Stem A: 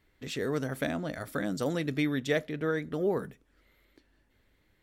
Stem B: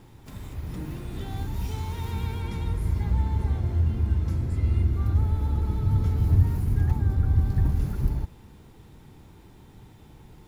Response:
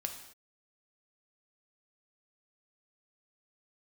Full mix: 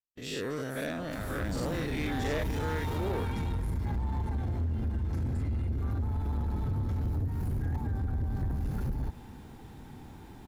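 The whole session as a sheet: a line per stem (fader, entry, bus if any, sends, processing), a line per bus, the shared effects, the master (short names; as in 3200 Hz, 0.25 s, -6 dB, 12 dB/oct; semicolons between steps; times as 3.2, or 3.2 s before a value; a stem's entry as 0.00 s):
-5.5 dB, 0.00 s, no send, spectral dilation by 0.12 s; expander -50 dBFS
+1.0 dB, 0.85 s, no send, thirty-one-band EQ 250 Hz +7 dB, 800 Hz +7 dB, 1600 Hz +5 dB; compressor, threshold -24 dBFS, peak gain reduction 11 dB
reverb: off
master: gate with hold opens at -41 dBFS; soft clip -26.5 dBFS, distortion -12 dB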